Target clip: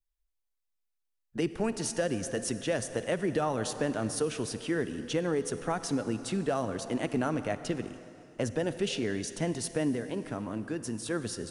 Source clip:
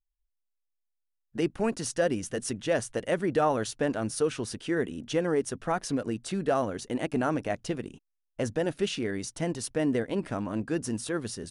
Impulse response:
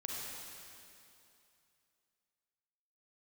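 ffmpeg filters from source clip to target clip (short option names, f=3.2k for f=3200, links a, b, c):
-filter_complex "[0:a]asettb=1/sr,asplit=3[a][b][c];[a]atrim=end=9.934[d];[b]atrim=start=9.93:end=11.11,asetpts=PTS-STARTPTS,afade=t=in:d=0.004:c=qsin,afade=t=out:st=1.176:d=0.004:c=qsin,acompressor=threshold=-33dB:ratio=2.5[e];[c]atrim=start=11.106[f];[d][e]acrossfade=d=0.004:c1=hsin:c2=qsin[g];[g][f]acrossfade=d=0.004:c1=qsin:c2=hsin,asplit=2[h][i];[1:a]atrim=start_sample=2205[j];[i][j]afir=irnorm=-1:irlink=0,volume=-10.5dB[k];[h][k]amix=inputs=2:normalize=0,acrossover=split=190|3000[l][m][n];[m]acompressor=threshold=-26dB:ratio=3[o];[l][o][n]amix=inputs=3:normalize=0,volume=-1.5dB"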